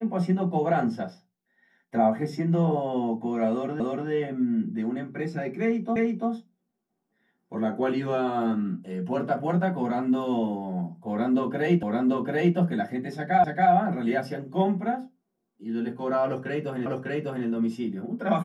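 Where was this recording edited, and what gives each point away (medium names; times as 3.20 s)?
3.80 s: repeat of the last 0.29 s
5.96 s: repeat of the last 0.34 s
11.83 s: repeat of the last 0.74 s
13.44 s: repeat of the last 0.28 s
16.86 s: repeat of the last 0.6 s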